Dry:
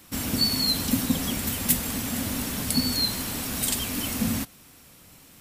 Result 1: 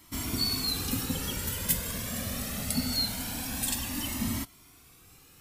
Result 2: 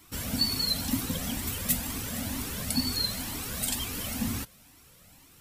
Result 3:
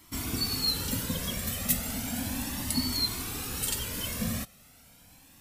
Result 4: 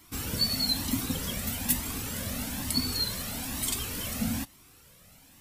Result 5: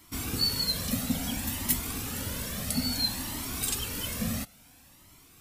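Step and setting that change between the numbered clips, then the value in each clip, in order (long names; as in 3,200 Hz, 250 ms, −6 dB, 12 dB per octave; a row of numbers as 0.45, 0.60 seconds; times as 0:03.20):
flanger whose copies keep moving one way, speed: 0.23, 2.1, 0.35, 1.1, 0.59 Hertz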